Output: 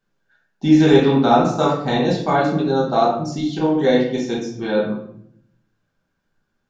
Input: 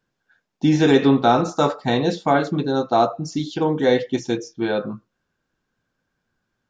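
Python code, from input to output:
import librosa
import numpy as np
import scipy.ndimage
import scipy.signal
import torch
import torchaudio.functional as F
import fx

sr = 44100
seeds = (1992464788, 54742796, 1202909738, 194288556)

y = fx.room_shoebox(x, sr, seeds[0], volume_m3=130.0, walls='mixed', distance_m=1.2)
y = y * 10.0 ** (-3.5 / 20.0)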